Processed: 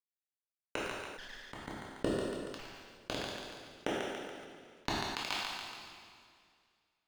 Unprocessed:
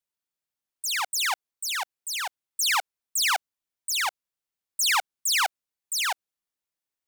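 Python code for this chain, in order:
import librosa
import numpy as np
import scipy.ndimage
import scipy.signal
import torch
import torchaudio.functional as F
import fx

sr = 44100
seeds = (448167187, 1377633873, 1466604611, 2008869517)

p1 = fx.self_delay(x, sr, depth_ms=0.81)
p2 = fx.rider(p1, sr, range_db=10, speed_s=2.0)
p3 = p1 + F.gain(torch.from_numpy(p2), -1.5).numpy()
p4 = fx.low_shelf_res(p3, sr, hz=210.0, db=-11.5, q=1.5)
p5 = fx.gate_flip(p4, sr, shuts_db=-23.0, range_db=-41)
p6 = fx.granulator(p5, sr, seeds[0], grain_ms=100.0, per_s=20.0, spray_ms=100.0, spread_st=0)
p7 = fx.rotary_switch(p6, sr, hz=0.65, then_hz=6.3, switch_at_s=2.49)
p8 = fx.quant_companded(p7, sr, bits=4)
p9 = fx.air_absorb(p8, sr, metres=240.0)
p10 = p9 + fx.echo_thinned(p9, sr, ms=142, feedback_pct=37, hz=370.0, wet_db=-8, dry=0)
p11 = fx.rev_double_slope(p10, sr, seeds[1], early_s=0.79, late_s=3.3, knee_db=-19, drr_db=-1.0)
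p12 = fx.sustainer(p11, sr, db_per_s=29.0)
y = F.gain(torch.from_numpy(p12), 17.5).numpy()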